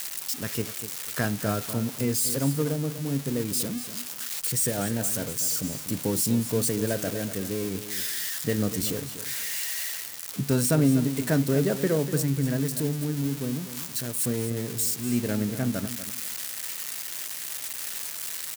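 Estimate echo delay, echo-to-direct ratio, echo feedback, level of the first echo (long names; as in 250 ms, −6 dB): 244 ms, −12.0 dB, 21%, −12.0 dB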